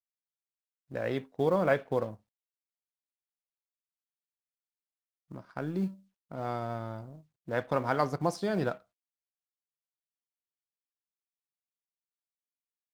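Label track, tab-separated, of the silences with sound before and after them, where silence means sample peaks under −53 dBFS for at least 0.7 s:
2.170000	5.310000	silence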